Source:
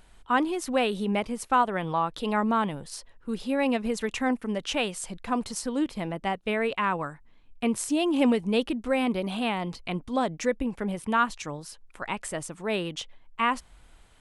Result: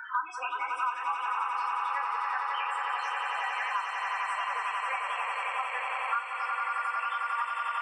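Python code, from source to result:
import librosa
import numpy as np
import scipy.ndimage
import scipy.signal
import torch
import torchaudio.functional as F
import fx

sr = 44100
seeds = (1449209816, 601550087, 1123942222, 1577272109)

p1 = fx.spec_steps(x, sr, hold_ms=100)
p2 = scipy.signal.sosfilt(scipy.signal.butter(4, 1200.0, 'highpass', fs=sr, output='sos'), p1)
p3 = fx.tilt_eq(p2, sr, slope=-4.0)
p4 = fx.rider(p3, sr, range_db=5, speed_s=2.0)
p5 = p3 + (p4 * 10.0 ** (2.0 / 20.0))
p6 = fx.spec_topn(p5, sr, count=8)
p7 = fx.stretch_vocoder_free(p6, sr, factor=0.55)
p8 = fx.doubler(p7, sr, ms=41.0, db=-11.0)
p9 = p8 + fx.echo_swell(p8, sr, ms=90, loudest=8, wet_db=-7.0, dry=0)
p10 = fx.band_squash(p9, sr, depth_pct=100)
y = p10 * 10.0 ** (2.0 / 20.0)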